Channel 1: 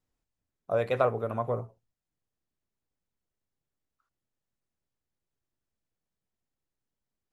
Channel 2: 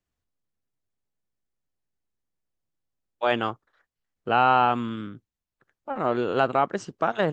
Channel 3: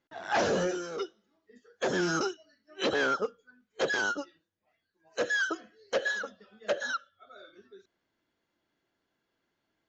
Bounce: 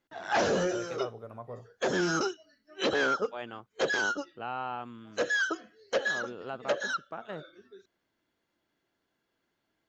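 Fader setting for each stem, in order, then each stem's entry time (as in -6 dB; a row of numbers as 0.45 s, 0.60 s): -12.5 dB, -16.5 dB, +0.5 dB; 0.00 s, 0.10 s, 0.00 s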